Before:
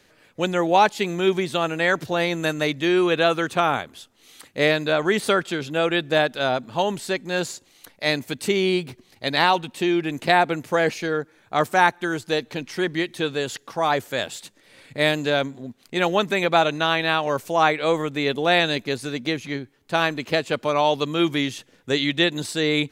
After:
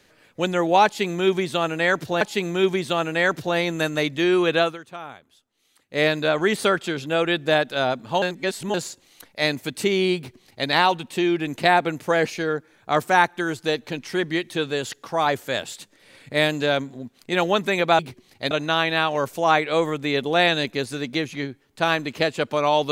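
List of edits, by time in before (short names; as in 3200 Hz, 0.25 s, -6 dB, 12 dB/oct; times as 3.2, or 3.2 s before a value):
0.85–2.21 loop, 2 plays
3.24–4.69 dip -16 dB, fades 0.18 s
6.86–7.38 reverse
8.8–9.32 copy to 16.63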